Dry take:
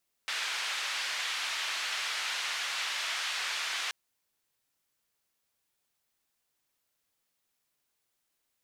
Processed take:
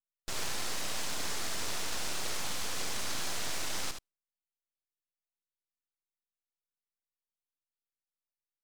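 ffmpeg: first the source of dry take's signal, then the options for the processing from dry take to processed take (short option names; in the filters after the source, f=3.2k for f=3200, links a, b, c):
-f lavfi -i "anoisesrc=c=white:d=3.63:r=44100:seed=1,highpass=f=1300,lowpass=f=3600,volume=-19.8dB"
-filter_complex "[0:a]afftdn=nr=23:nf=-58,aeval=exprs='abs(val(0))':c=same,asplit=2[a][b];[b]aecho=0:1:76:0.422[c];[a][c]amix=inputs=2:normalize=0"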